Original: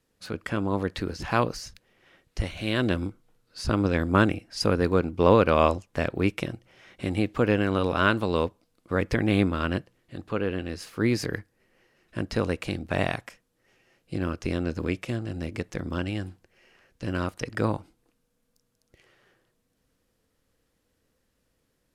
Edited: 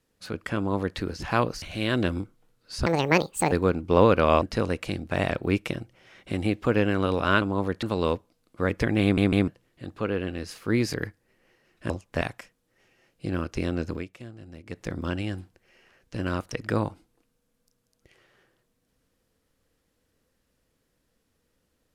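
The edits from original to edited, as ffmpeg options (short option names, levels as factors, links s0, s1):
-filter_complex "[0:a]asplit=15[s0][s1][s2][s3][s4][s5][s6][s7][s8][s9][s10][s11][s12][s13][s14];[s0]atrim=end=1.622[s15];[s1]atrim=start=2.478:end=3.724[s16];[s2]atrim=start=3.72:end=4.81,asetpts=PTS-STARTPTS,asetrate=73206,aresample=44100,atrim=end_sample=28957,asetpts=PTS-STARTPTS[s17];[s3]atrim=start=4.806:end=5.712[s18];[s4]atrim=start=12.208:end=13.102[s19];[s5]atrim=start=6.028:end=8.142[s20];[s6]atrim=start=0.568:end=0.982[s21];[s7]atrim=start=8.138:end=9.492[s22];[s8]atrim=start=9.338:end=9.492[s23];[s9]atrim=start=9.338:end=9.492[s24];[s10]atrim=start=9.788:end=12.212[s25];[s11]atrim=start=5.708:end=6.032[s26];[s12]atrim=start=13.098:end=14.94,asetpts=PTS-STARTPTS,afade=t=out:st=1.682:d=0.16:silence=0.251189[s27];[s13]atrim=start=14.94:end=15.55,asetpts=PTS-STARTPTS,volume=0.251[s28];[s14]atrim=start=15.55,asetpts=PTS-STARTPTS,afade=t=in:d=0.16:silence=0.251189[s29];[s15][s16]acrossfade=d=0.004:c1=hsin:c2=hsin[s30];[s30][s17]acrossfade=d=0.004:c1=hsin:c2=hsin[s31];[s31][s18]acrossfade=d=0.004:c1=hsin:c2=hsin[s32];[s32][s19]acrossfade=d=0.004:c1=hsin:c2=hsin[s33];[s33][s20]acrossfade=d=0.004:c1=hsin:c2=hsin[s34];[s34][s21]acrossfade=d=0.004:c1=hsin:c2=hsin[s35];[s35][s22]acrossfade=d=0.004:c1=hsin:c2=hsin[s36];[s36][s23]acrossfade=d=0.004:c1=hsin:c2=hsin[s37];[s37][s24]acrossfade=d=0.004:c1=hsin:c2=hsin[s38];[s38][s25]acrossfade=d=0.004:c1=hsin:c2=hsin[s39];[s39][s26]acrossfade=d=0.004:c1=hsin:c2=hsin[s40];[s27][s28][s29]concat=n=3:v=0:a=1[s41];[s40][s41]acrossfade=d=0.004:c1=hsin:c2=hsin"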